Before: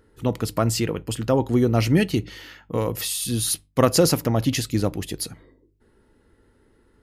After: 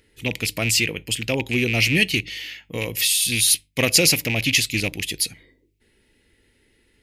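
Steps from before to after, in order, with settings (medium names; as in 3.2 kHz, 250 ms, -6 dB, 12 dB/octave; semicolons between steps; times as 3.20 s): rattle on loud lows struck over -23 dBFS, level -23 dBFS; resonant high shelf 1.7 kHz +10.5 dB, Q 3; trim -4 dB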